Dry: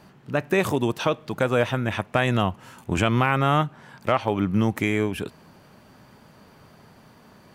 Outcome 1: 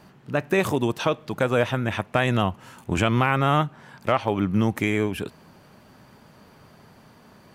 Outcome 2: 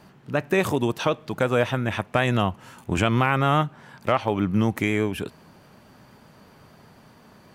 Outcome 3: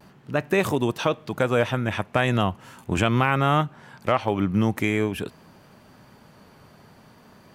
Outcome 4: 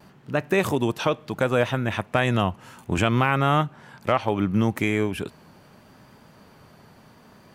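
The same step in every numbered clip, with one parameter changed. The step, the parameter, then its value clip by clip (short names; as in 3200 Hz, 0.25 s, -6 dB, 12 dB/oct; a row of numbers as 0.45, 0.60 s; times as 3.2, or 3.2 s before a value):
vibrato, rate: 15, 8.2, 0.42, 0.7 Hz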